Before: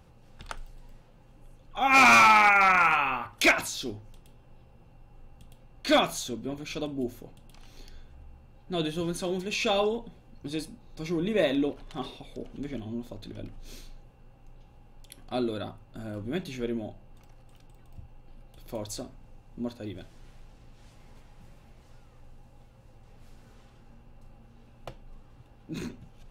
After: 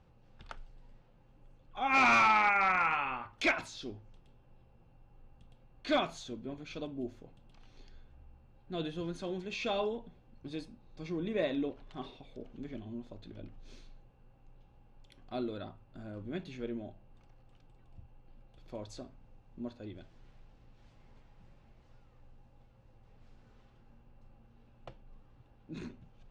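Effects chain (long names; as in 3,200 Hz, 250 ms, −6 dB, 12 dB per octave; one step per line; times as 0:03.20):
high-frequency loss of the air 110 metres
level −7 dB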